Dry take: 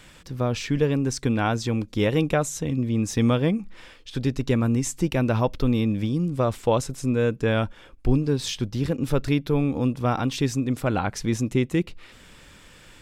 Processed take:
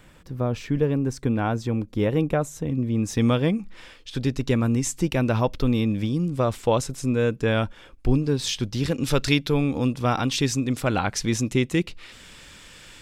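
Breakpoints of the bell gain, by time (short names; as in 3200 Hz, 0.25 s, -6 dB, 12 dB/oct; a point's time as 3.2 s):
bell 5100 Hz 2.9 oct
2.67 s -9 dB
3.33 s +2 dB
8.42 s +2 dB
9.28 s +14 dB
9.6 s +6.5 dB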